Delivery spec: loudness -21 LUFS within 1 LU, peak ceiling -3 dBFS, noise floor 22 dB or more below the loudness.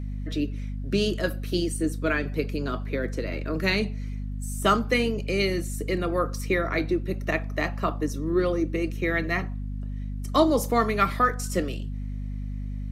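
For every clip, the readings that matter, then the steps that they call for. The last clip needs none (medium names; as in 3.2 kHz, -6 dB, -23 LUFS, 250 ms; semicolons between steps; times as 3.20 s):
hum 50 Hz; highest harmonic 250 Hz; hum level -29 dBFS; loudness -27.0 LUFS; peak level -7.0 dBFS; loudness target -21.0 LUFS
-> de-hum 50 Hz, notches 5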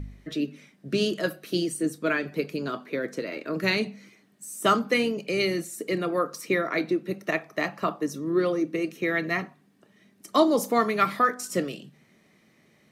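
hum not found; loudness -27.0 LUFS; peak level -7.5 dBFS; loudness target -21.0 LUFS
-> trim +6 dB; peak limiter -3 dBFS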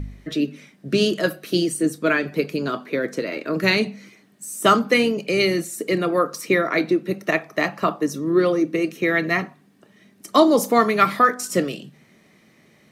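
loudness -21.0 LUFS; peak level -3.0 dBFS; noise floor -56 dBFS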